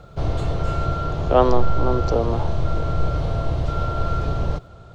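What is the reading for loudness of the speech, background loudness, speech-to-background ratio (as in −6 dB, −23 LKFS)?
−22.5 LKFS, −25.0 LKFS, 2.5 dB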